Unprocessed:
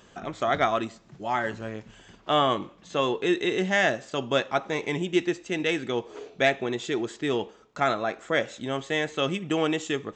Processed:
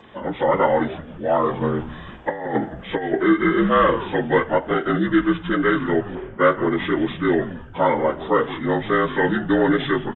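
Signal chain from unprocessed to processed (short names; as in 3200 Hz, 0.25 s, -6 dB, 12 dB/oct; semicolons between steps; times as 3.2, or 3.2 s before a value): inharmonic rescaling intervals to 78%; in parallel at -0.5 dB: limiter -20.5 dBFS, peak gain reduction 10 dB; 1.61–3.23 on the sum: negative-ratio compressor -25 dBFS, ratio -0.5; frequency-shifting echo 0.172 s, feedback 40%, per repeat -150 Hz, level -14 dB; 6.15–6.9 low-pass opened by the level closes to 2000 Hz, open at -16 dBFS; gain +4 dB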